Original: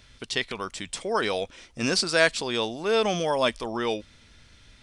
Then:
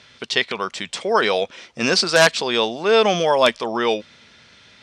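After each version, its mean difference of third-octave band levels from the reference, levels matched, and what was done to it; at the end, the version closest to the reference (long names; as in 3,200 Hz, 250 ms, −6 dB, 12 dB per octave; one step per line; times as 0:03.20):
2.5 dB: parametric band 290 Hz −7 dB 0.37 octaves
wrap-around overflow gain 10 dB
band-pass filter 190–5,500 Hz
level +8.5 dB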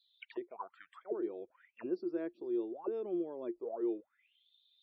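15.0 dB: mu-law and A-law mismatch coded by A
envelope filter 350–4,000 Hz, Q 17, down, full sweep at −25.5 dBFS
spectral peaks only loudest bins 64
level +4.5 dB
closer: first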